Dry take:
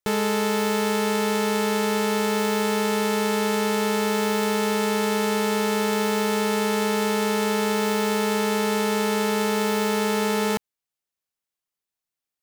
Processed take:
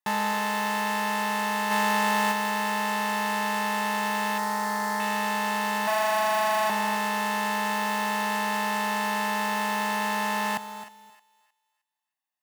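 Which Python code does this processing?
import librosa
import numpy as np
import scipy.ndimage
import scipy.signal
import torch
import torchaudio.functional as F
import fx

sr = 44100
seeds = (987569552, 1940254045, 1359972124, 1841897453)

p1 = x + fx.echo_thinned(x, sr, ms=311, feedback_pct=31, hz=850.0, wet_db=-15.5, dry=0)
p2 = fx.overflow_wrap(p1, sr, gain_db=19.5, at=(5.87, 6.7))
p3 = fx.peak_eq(p2, sr, hz=5300.0, db=-12.0, octaves=2.4)
p4 = p3 + 0.93 * np.pad(p3, (int(1.1 * sr / 1000.0), 0))[:len(p3)]
p5 = 10.0 ** (-23.5 / 20.0) * (np.abs((p4 / 10.0 ** (-23.5 / 20.0) + 3.0) % 4.0 - 2.0) - 1.0)
p6 = p4 + (p5 * 10.0 ** (-11.0 / 20.0))
p7 = fx.cheby1_bandstop(p6, sr, low_hz=2100.0, high_hz=4200.0, order=4, at=(4.38, 5.0))
p8 = fx.quant_float(p7, sr, bits=2)
p9 = fx.weighting(p8, sr, curve='A')
p10 = fx.echo_feedback(p9, sr, ms=263, feedback_pct=18, wet_db=-13.0)
y = fx.env_flatten(p10, sr, amount_pct=100, at=(1.7, 2.31), fade=0.02)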